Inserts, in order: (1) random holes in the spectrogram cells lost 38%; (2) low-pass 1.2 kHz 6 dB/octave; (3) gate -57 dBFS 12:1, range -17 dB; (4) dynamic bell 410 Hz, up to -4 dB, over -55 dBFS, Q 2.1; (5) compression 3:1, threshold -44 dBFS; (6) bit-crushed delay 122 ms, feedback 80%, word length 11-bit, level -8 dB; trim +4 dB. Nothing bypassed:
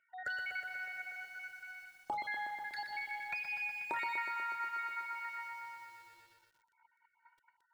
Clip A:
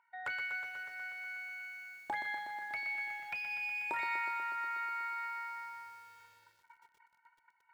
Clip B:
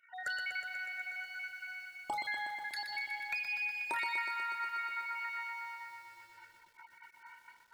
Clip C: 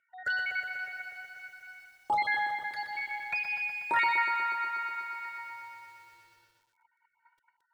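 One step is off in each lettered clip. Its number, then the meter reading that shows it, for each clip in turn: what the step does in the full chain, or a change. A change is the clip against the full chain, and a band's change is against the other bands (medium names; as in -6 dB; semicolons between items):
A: 1, momentary loudness spread change -2 LU; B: 2, 4 kHz band +7.5 dB; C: 5, mean gain reduction 4.0 dB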